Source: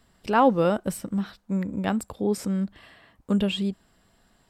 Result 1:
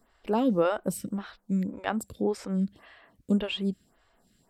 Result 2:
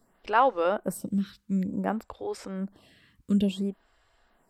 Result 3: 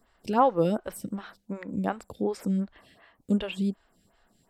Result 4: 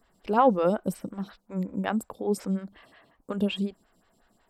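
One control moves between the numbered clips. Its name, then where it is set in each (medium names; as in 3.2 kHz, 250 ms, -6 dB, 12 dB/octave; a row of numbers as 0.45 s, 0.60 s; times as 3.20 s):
lamp-driven phase shifter, rate: 1.8 Hz, 0.56 Hz, 2.7 Hz, 5.5 Hz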